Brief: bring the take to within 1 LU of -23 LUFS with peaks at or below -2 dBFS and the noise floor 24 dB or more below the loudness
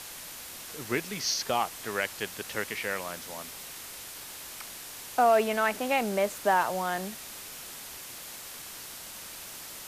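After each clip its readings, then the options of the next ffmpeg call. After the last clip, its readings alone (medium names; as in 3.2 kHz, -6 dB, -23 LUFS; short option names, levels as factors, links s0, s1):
noise floor -43 dBFS; noise floor target -56 dBFS; loudness -31.5 LUFS; peak level -13.0 dBFS; loudness target -23.0 LUFS
-> -af "afftdn=nr=13:nf=-43"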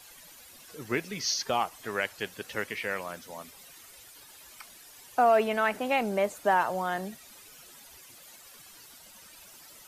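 noise floor -52 dBFS; noise floor target -53 dBFS
-> -af "afftdn=nr=6:nf=-52"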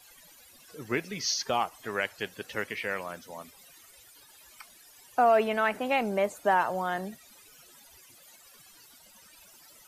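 noise floor -56 dBFS; loudness -29.0 LUFS; peak level -13.0 dBFS; loudness target -23.0 LUFS
-> -af "volume=2"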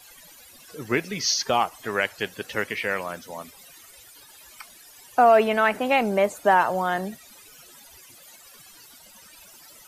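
loudness -23.0 LUFS; peak level -7.0 dBFS; noise floor -50 dBFS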